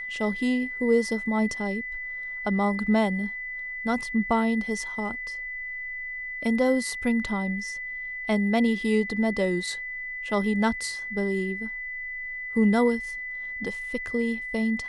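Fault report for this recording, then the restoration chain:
tone 2000 Hz -32 dBFS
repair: notch 2000 Hz, Q 30

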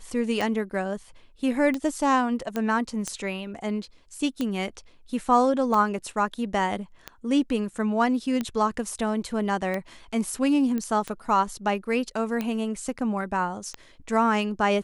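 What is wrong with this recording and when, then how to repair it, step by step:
tick 45 rpm
2.56 pop -15 dBFS
10.78 pop -18 dBFS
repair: de-click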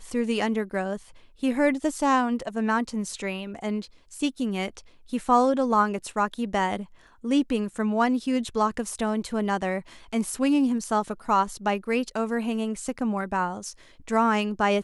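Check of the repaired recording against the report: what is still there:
none

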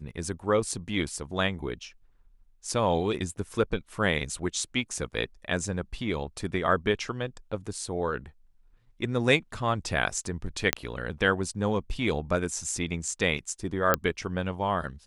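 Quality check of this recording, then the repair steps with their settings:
10.73 pop -4 dBFS
13.94 pop -7 dBFS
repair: de-click

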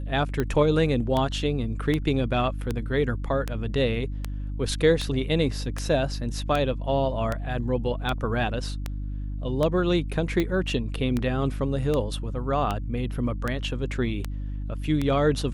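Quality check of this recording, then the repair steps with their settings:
hum 50 Hz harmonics 6 -31 dBFS
tick 78 rpm -13 dBFS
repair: de-click; de-hum 50 Hz, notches 6

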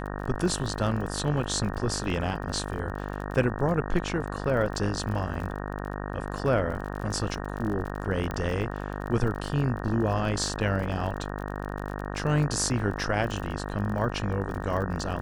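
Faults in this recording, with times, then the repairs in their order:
buzz 50 Hz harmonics 37 -34 dBFS
crackle 35/s -34 dBFS
8.31 pop -19 dBFS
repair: de-click; de-hum 50 Hz, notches 37

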